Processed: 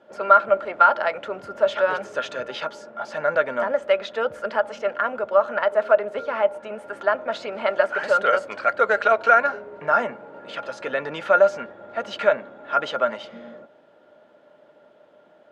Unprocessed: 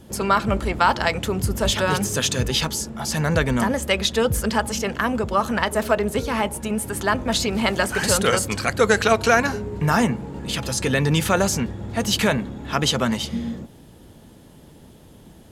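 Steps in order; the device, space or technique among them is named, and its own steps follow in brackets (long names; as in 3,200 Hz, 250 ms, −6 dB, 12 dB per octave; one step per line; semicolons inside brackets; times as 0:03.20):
tin-can telephone (band-pass filter 510–2,100 Hz; hollow resonant body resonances 600/1,400 Hz, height 17 dB, ringing for 75 ms)
level −3 dB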